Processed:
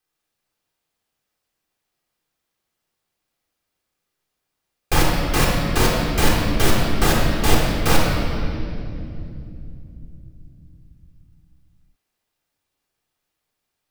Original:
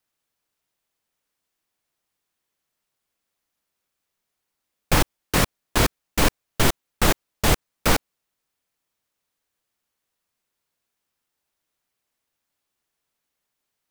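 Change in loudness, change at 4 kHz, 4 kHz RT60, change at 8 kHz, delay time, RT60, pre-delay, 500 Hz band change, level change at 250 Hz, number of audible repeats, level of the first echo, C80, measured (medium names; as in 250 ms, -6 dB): +2.5 dB, +2.5 dB, 2.1 s, +0.5 dB, no echo, 2.8 s, 3 ms, +4.0 dB, +5.0 dB, no echo, no echo, 1.5 dB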